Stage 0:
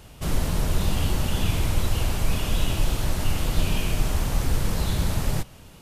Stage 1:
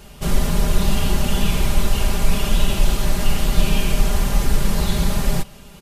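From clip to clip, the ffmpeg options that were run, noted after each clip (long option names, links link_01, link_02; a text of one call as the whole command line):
ffmpeg -i in.wav -af "aecho=1:1:5:0.71,volume=3.5dB" out.wav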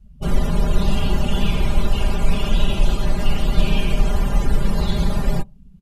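ffmpeg -i in.wav -af "afftdn=noise_reduction=31:noise_floor=-32" out.wav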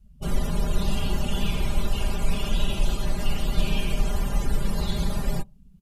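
ffmpeg -i in.wav -af "highshelf=frequency=4800:gain=8,volume=-6.5dB" out.wav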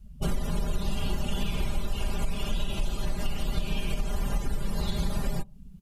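ffmpeg -i in.wav -af "acompressor=threshold=-29dB:ratio=6,volume=5.5dB" out.wav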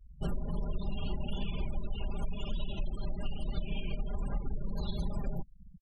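ffmpeg -i in.wav -af "afftfilt=real='re*gte(hypot(re,im),0.0251)':imag='im*gte(hypot(re,im),0.0251)':win_size=1024:overlap=0.75,volume=-5.5dB" out.wav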